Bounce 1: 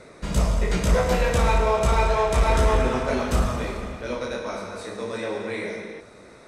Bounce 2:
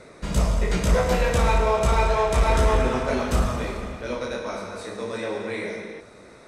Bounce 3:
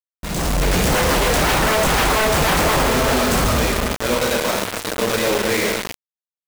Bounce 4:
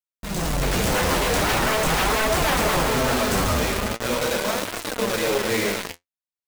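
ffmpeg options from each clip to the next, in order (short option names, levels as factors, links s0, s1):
-af anull
-af "acrusher=bits=4:mix=0:aa=0.000001,aeval=exprs='0.0891*(abs(mod(val(0)/0.0891+3,4)-2)-1)':c=same,dynaudnorm=f=120:g=7:m=3.35,volume=0.891"
-af "flanger=delay=2.6:depth=9.2:regen=53:speed=0.42:shape=triangular"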